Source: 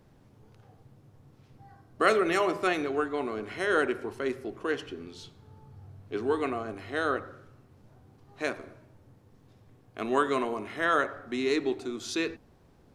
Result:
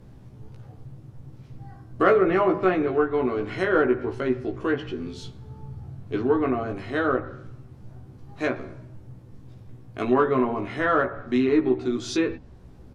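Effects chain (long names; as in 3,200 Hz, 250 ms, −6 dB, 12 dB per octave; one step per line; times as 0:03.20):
treble cut that deepens with the level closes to 1,700 Hz, closed at −24.5 dBFS
low-shelf EQ 210 Hz +12 dB
in parallel at −9 dB: soft clipping −19 dBFS, distortion −16 dB
on the sum: double-tracking delay 16 ms −3 dB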